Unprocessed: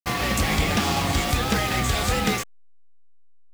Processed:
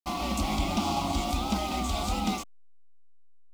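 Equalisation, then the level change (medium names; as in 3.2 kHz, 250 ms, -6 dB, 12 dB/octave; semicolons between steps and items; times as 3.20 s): low-pass 3.7 kHz 6 dB/octave; static phaser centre 460 Hz, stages 6; -2.0 dB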